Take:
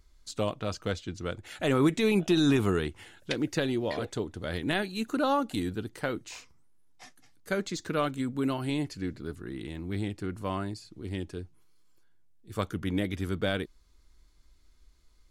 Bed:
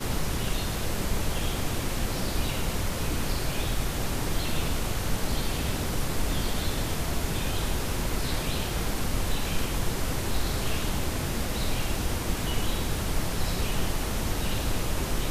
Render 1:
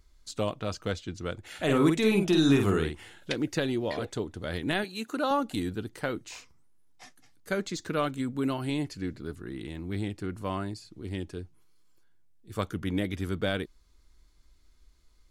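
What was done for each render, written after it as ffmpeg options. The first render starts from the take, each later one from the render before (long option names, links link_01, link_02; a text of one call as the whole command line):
ffmpeg -i in.wav -filter_complex "[0:a]asettb=1/sr,asplit=3[link_01][link_02][link_03];[link_01]atrim=end=1.494[link_04];[link_02]atrim=start=1.49:end=3.3,asetpts=PTS-STARTPTS,afade=type=in:duration=0.004:curve=qsin,afade=type=out:start_time=1.806:duration=0.004:curve=qsin,asplit=2[link_05][link_06];[link_06]adelay=50,volume=-5dB[link_07];[link_05][link_07]amix=inputs=2:normalize=0,atrim=end_sample=79821[link_08];[link_03]atrim=start=3.296[link_09];[link_04][link_08]acrossfade=duration=0.004:curve1=hsin:curve2=qsin[link_10];[link_10][link_09]acrossfade=duration=0.004:curve1=qsin:curve2=hsin,asettb=1/sr,asplit=3[link_11][link_12][link_13];[link_11]atrim=end=4.844[link_14];[link_12]atrim=start=4.84:end=5.31,asetpts=PTS-STARTPTS,afade=type=in:duration=0.004:curve=qsin,afade=type=out:start_time=0.466:duration=0.004:curve=qsin,highpass=frequency=310:poles=1[link_15];[link_13]atrim=start=5.306[link_16];[link_14][link_15]acrossfade=duration=0.004:curve1=hsin:curve2=qsin[link_17];[link_17][link_16]acrossfade=duration=0.004:curve1=qsin:curve2=hsin" out.wav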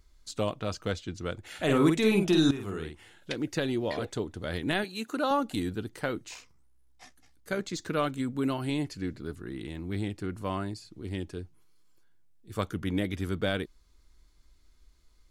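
ffmpeg -i in.wav -filter_complex "[0:a]asettb=1/sr,asplit=3[link_01][link_02][link_03];[link_01]atrim=end=6.344[link_04];[link_02]atrim=start=6.34:end=7.73,asetpts=PTS-STARTPTS,afade=type=in:duration=0.004:curve=qsin,afade=type=out:start_time=1.386:duration=0.004:curve=qsin,tremolo=f=64:d=0.4[link_05];[link_03]atrim=start=7.726[link_06];[link_04][link_05]acrossfade=duration=0.004:curve1=hsin:curve2=qsin[link_07];[link_07][link_06]acrossfade=duration=0.004:curve1=qsin:curve2=hsin,asplit=2[link_08][link_09];[link_08]atrim=end=2.51,asetpts=PTS-STARTPTS,afade=type=out:start_time=2.506:duration=0.004:curve=hsin:silence=0.177828[link_10];[link_09]atrim=start=2.51,asetpts=PTS-STARTPTS,afade=type=in:duration=1.29:silence=0.177828[link_11];[link_10][link_11]concat=n=2:v=0:a=1" out.wav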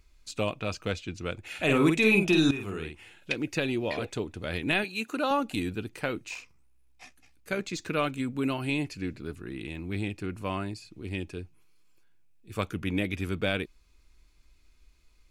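ffmpeg -i in.wav -af "equalizer=frequency=2500:width_type=o:width=0.25:gain=13" out.wav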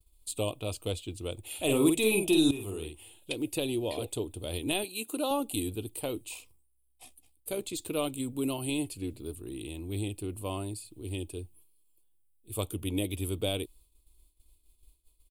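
ffmpeg -i in.wav -af "agate=range=-33dB:threshold=-53dB:ratio=3:detection=peak,firequalizer=gain_entry='entry(110,0);entry(170,-11);entry(300,0);entry(1000,-5);entry(1600,-22);entry(3200,2);entry(5900,-9);entry(8700,15)':delay=0.05:min_phase=1" out.wav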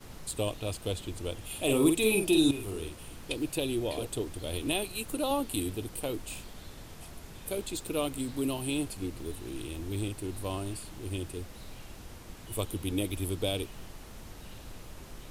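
ffmpeg -i in.wav -i bed.wav -filter_complex "[1:a]volume=-18dB[link_01];[0:a][link_01]amix=inputs=2:normalize=0" out.wav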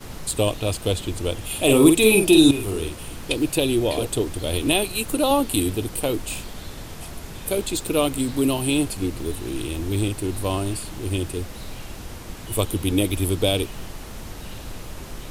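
ffmpeg -i in.wav -af "volume=10.5dB" out.wav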